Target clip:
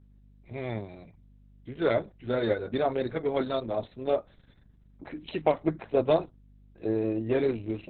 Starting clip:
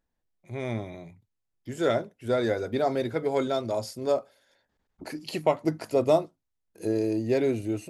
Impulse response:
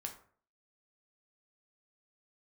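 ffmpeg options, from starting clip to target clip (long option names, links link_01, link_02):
-af "aeval=exprs='val(0)+0.00224*(sin(2*PI*50*n/s)+sin(2*PI*2*50*n/s)/2+sin(2*PI*3*50*n/s)/3+sin(2*PI*4*50*n/s)/4+sin(2*PI*5*50*n/s)/5)':channel_layout=same,aeval=exprs='0.355*(cos(1*acos(clip(val(0)/0.355,-1,1)))-cos(1*PI/2))+0.00631*(cos(4*acos(clip(val(0)/0.355,-1,1)))-cos(4*PI/2))+0.00631*(cos(5*acos(clip(val(0)/0.355,-1,1)))-cos(5*PI/2))+0.00501*(cos(6*acos(clip(val(0)/0.355,-1,1)))-cos(6*PI/2))+0.0126*(cos(7*acos(clip(val(0)/0.355,-1,1)))-cos(7*PI/2))':channel_layout=same" -ar 48000 -c:a libopus -b:a 6k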